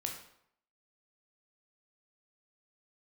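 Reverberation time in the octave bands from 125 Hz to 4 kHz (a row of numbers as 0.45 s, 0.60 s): 0.65 s, 0.65 s, 0.70 s, 0.70 s, 0.60 s, 0.55 s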